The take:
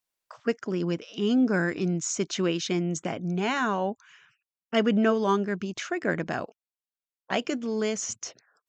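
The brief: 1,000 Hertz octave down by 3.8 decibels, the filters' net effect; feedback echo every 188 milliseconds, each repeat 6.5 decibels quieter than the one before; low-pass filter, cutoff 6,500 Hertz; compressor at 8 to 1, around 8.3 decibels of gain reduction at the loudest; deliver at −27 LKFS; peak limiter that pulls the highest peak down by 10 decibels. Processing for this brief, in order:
low-pass filter 6,500 Hz
parametric band 1,000 Hz −5 dB
downward compressor 8 to 1, threshold −28 dBFS
brickwall limiter −25.5 dBFS
repeating echo 188 ms, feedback 47%, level −6.5 dB
level +7 dB

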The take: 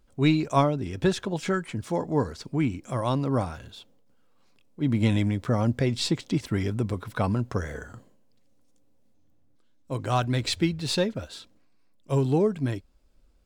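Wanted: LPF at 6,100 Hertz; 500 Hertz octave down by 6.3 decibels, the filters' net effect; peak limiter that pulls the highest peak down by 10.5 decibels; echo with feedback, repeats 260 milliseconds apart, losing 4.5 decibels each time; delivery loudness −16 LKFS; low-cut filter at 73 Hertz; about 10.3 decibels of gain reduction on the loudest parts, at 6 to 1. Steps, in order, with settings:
high-pass filter 73 Hz
low-pass filter 6,100 Hz
parametric band 500 Hz −8.5 dB
downward compressor 6 to 1, threshold −30 dBFS
brickwall limiter −29.5 dBFS
repeating echo 260 ms, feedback 60%, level −4.5 dB
level +22 dB

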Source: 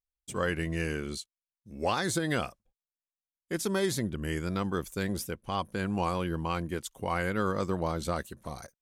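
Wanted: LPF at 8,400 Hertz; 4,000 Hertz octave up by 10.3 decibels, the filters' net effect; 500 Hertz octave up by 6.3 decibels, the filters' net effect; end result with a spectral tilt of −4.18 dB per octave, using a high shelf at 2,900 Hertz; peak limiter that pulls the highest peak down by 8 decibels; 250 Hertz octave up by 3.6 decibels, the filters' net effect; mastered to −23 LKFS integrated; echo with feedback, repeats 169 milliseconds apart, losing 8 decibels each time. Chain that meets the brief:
low-pass filter 8,400 Hz
parametric band 250 Hz +3 dB
parametric band 500 Hz +6.5 dB
high-shelf EQ 2,900 Hz +7 dB
parametric band 4,000 Hz +7.5 dB
brickwall limiter −17.5 dBFS
repeating echo 169 ms, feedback 40%, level −8 dB
level +6 dB

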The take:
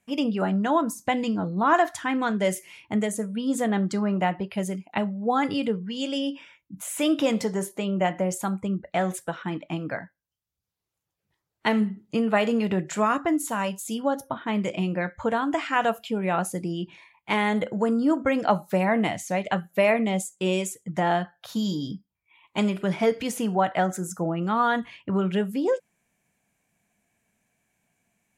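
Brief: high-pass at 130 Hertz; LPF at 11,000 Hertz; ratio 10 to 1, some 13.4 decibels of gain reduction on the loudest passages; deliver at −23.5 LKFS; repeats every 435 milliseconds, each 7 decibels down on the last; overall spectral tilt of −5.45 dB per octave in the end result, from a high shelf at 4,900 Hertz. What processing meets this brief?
high-pass filter 130 Hz
low-pass filter 11,000 Hz
high-shelf EQ 4,900 Hz −6.5 dB
downward compressor 10 to 1, threshold −30 dBFS
repeating echo 435 ms, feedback 45%, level −7 dB
level +11 dB

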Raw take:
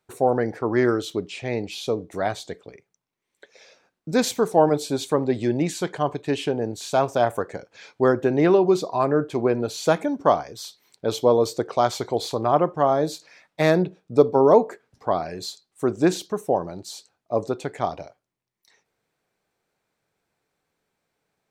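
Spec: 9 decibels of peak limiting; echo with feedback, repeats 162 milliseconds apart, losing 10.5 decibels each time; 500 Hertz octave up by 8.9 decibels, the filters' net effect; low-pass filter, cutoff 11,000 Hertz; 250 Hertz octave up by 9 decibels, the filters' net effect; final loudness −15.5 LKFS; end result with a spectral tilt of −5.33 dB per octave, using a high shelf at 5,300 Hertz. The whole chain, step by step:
low-pass filter 11,000 Hz
parametric band 250 Hz +8.5 dB
parametric band 500 Hz +8.5 dB
high-shelf EQ 5,300 Hz −6.5 dB
brickwall limiter −2.5 dBFS
repeating echo 162 ms, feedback 30%, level −10.5 dB

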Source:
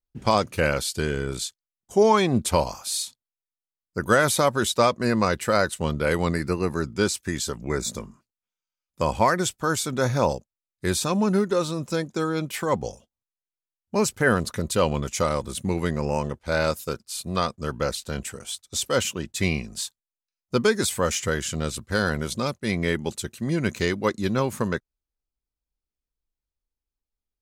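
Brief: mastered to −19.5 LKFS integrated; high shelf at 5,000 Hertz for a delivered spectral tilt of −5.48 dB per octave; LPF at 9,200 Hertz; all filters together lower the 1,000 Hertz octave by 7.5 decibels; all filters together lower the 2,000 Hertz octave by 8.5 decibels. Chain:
low-pass filter 9,200 Hz
parametric band 1,000 Hz −7 dB
parametric band 2,000 Hz −8 dB
high-shelf EQ 5,000 Hz −5.5 dB
level +8 dB

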